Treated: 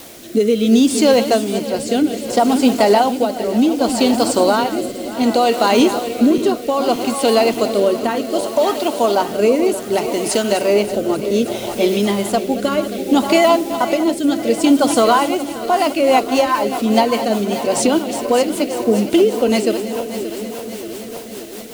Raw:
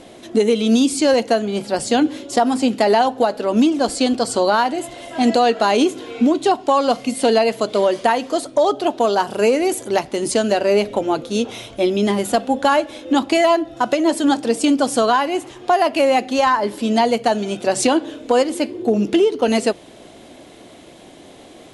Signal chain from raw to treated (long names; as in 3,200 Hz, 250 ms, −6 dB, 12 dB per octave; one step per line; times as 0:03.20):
feedback delay that plays each chunk backwards 290 ms, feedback 79%, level −10.5 dB
notch filter 1,700 Hz, Q 8.2
background noise white −38 dBFS
rotating-speaker cabinet horn 0.65 Hz, later 5 Hz, at 0:15.39
level +3 dB